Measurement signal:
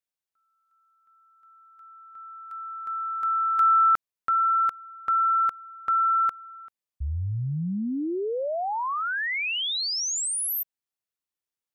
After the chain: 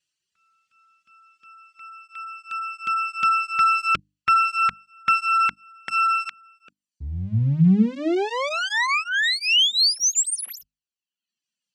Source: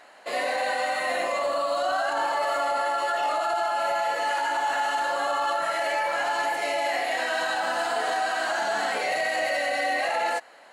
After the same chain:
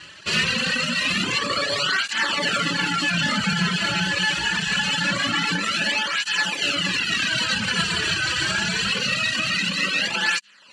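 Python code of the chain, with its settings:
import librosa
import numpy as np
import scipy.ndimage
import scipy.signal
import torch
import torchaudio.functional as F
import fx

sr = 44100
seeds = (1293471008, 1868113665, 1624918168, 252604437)

p1 = fx.lower_of_two(x, sr, delay_ms=0.67)
p2 = scipy.signal.sosfilt(scipy.signal.butter(4, 8000.0, 'lowpass', fs=sr, output='sos'), p1)
p3 = fx.high_shelf_res(p2, sr, hz=1800.0, db=8.5, q=1.5)
p4 = 10.0 ** (-20.0 / 20.0) * np.tanh(p3 / 10.0 ** (-20.0 / 20.0))
p5 = p3 + (p4 * librosa.db_to_amplitude(-8.5))
p6 = scipy.signal.sosfilt(scipy.signal.butter(2, 61.0, 'highpass', fs=sr, output='sos'), p5)
p7 = fx.peak_eq(p6, sr, hz=200.0, db=9.0, octaves=0.67)
p8 = fx.hum_notches(p7, sr, base_hz=50, count=6)
p9 = fx.dereverb_blind(p8, sr, rt60_s=0.85)
p10 = fx.rider(p9, sr, range_db=4, speed_s=0.5)
p11 = fx.flanger_cancel(p10, sr, hz=0.24, depth_ms=4.5)
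y = p11 * librosa.db_to_amplitude(4.5)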